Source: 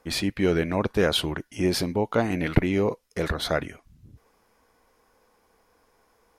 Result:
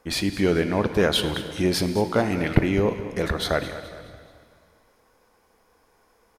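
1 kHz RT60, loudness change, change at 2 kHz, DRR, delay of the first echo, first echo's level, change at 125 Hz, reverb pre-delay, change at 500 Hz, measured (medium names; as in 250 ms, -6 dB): 2.0 s, +2.0 dB, +2.0 dB, 8.5 dB, 211 ms, -14.0 dB, +2.0 dB, 6 ms, +2.0 dB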